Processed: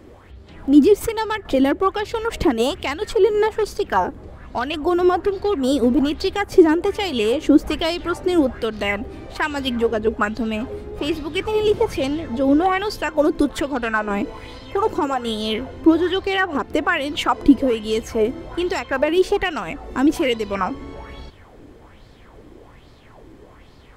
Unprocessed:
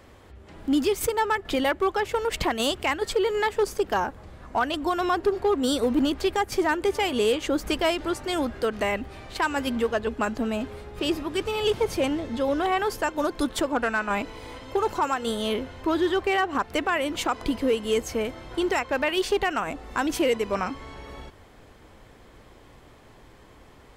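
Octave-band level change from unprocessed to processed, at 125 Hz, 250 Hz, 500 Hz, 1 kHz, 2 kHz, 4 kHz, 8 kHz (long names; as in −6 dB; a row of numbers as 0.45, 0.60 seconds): +5.5, +8.5, +5.5, +3.0, +3.5, +3.0, −1.0 decibels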